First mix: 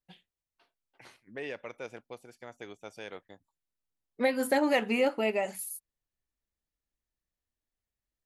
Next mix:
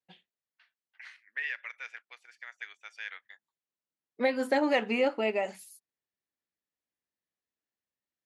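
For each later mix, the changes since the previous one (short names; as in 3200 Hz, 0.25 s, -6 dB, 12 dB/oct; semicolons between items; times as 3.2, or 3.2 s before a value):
first voice: add resonant high-pass 1800 Hz, resonance Q 3.8; master: add BPF 190–5800 Hz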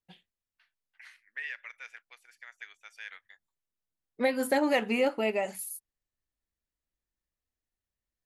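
first voice -3.5 dB; master: remove BPF 190–5800 Hz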